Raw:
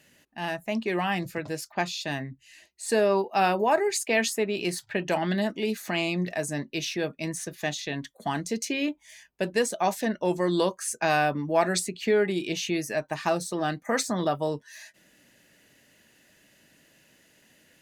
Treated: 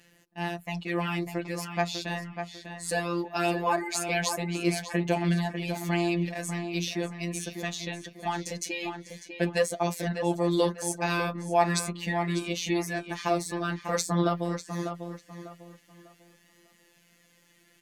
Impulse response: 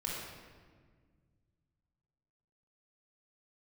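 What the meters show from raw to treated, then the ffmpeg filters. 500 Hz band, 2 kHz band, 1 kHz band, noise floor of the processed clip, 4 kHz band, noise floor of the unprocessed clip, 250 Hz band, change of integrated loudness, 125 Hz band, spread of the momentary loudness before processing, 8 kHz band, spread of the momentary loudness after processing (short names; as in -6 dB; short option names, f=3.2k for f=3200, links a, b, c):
-3.5 dB, -2.5 dB, -2.5 dB, -63 dBFS, -2.0 dB, -62 dBFS, -0.5 dB, -2.0 dB, +3.5 dB, 9 LU, -1.5 dB, 10 LU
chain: -filter_complex "[0:a]afftfilt=real='hypot(re,im)*cos(PI*b)':imag='0':win_size=1024:overlap=0.75,aphaser=in_gain=1:out_gain=1:delay=4.8:decay=0.34:speed=0.21:type=sinusoidal,asplit=2[a][b];[b]adelay=597,lowpass=f=3.3k:p=1,volume=-7.5dB,asplit=2[c][d];[d]adelay=597,lowpass=f=3.3k:p=1,volume=0.31,asplit=2[e][f];[f]adelay=597,lowpass=f=3.3k:p=1,volume=0.31,asplit=2[g][h];[h]adelay=597,lowpass=f=3.3k:p=1,volume=0.31[i];[a][c][e][g][i]amix=inputs=5:normalize=0,volume=1dB"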